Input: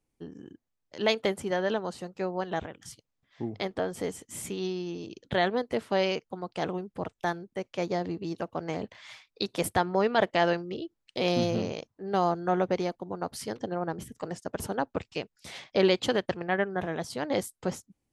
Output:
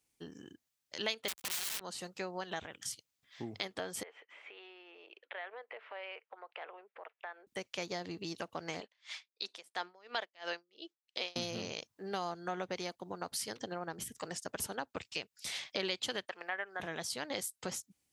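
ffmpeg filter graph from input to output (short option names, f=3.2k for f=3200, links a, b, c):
-filter_complex "[0:a]asettb=1/sr,asplit=3[a][b][c];[a]atrim=end=1.284[d];[b]atrim=start=1.28:end=1.81,asetpts=PTS-STARTPTS,afade=t=in:d=0.004:c=qsin,afade=t=out:st=0.526:d=0.004:c=qsin,aeval=exprs='(mod(25.1*val(0)+1,2)-1)/25.1':c=same,acrusher=bits=4:mix=0:aa=0.5[e];[c]atrim=start=1.806[f];[d][e]acrossfade=d=0.004:c1=hsin:c2=qsin[g];[g][f]acrossfade=d=0.004:c1=qsin:c2=hsin,asettb=1/sr,asplit=3[h][i][j];[h]atrim=end=4.034[k];[i]atrim=start=4.03:end=7.47,asetpts=PTS-STARTPTS,afade=t=in:d=0.004:c=qsin,afade=t=out:st=3.436:d=0.004:c=qsin,acompressor=threshold=-39dB:ratio=4:attack=3.2:release=140:knee=1:detection=peak,asuperpass=centerf=1100:order=8:qfactor=0.52[l];[j]atrim=start=7.466[m];[k][l]acrossfade=d=0.004:c1=hsin:c2=qsin[n];[n][m]acrossfade=d=0.004:c1=qsin:c2=hsin,asettb=1/sr,asplit=3[o][p][q];[o]atrim=end=8.804[r];[p]atrim=start=8.8:end=11.36,asetpts=PTS-STARTPTS,afade=t=in:d=0.004:c=qsin,afade=t=out:st=2.556:d=0.004:c=qsin,highpass=400,lowpass=7.1k,aeval=exprs='val(0)*pow(10,-31*(0.5-0.5*cos(2*PI*2.9*n/s))/20)':c=same[s];[q]atrim=start=11.356[t];[r][s]acrossfade=d=0.004:c1=hsin:c2=qsin[u];[u][t]acrossfade=d=0.004:c1=qsin:c2=hsin,asettb=1/sr,asplit=3[v][w][x];[v]atrim=end=16.254[y];[w]atrim=start=16.25:end=16.8,asetpts=PTS-STARTPTS,afade=t=in:d=0.004:c=qsin,afade=t=out:st=0.546:d=0.004:c=qsin,acrossover=split=2600[z][aa];[aa]acompressor=threshold=-54dB:ratio=4:attack=1:release=60[ab];[z][ab]amix=inputs=2:normalize=0,highpass=570[ac];[x]atrim=start=16.796[ad];[y][ac]acrossfade=d=0.004:c1=hsin:c2=qsin[ae];[ae][ad]acrossfade=d=0.004:c1=qsin:c2=hsin,highpass=46,tiltshelf=f=1.4k:g=-8,acompressor=threshold=-39dB:ratio=2.5,volume=1dB"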